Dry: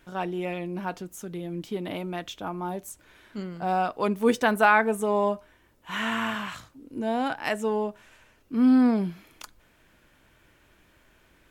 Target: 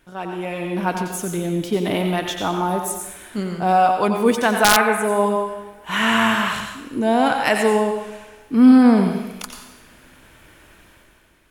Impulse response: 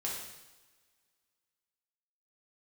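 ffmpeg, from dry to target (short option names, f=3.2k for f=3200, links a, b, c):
-filter_complex "[0:a]asplit=2[a][b];[b]lowshelf=f=390:g=-8[c];[1:a]atrim=start_sample=2205,adelay=88[d];[c][d]afir=irnorm=-1:irlink=0,volume=-5.5dB[e];[a][e]amix=inputs=2:normalize=0,aeval=exprs='(mod(2.51*val(0)+1,2)-1)/2.51':c=same,equalizer=f=9.9k:w=3.8:g=7,dynaudnorm=f=100:g=13:m=10.5dB"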